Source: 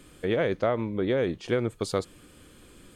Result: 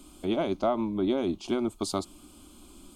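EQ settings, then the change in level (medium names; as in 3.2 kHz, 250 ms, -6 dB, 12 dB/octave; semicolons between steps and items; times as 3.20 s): static phaser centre 480 Hz, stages 6; +3.5 dB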